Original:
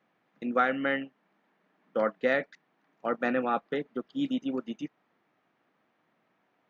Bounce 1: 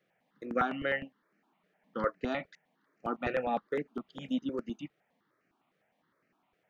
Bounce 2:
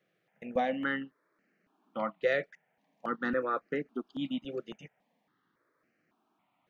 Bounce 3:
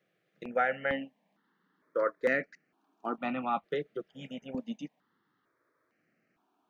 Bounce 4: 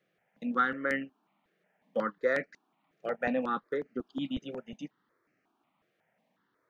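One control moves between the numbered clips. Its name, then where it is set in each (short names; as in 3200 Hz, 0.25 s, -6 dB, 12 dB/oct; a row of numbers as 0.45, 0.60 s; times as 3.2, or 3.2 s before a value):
step phaser, rate: 9.8, 3.6, 2.2, 5.5 Hz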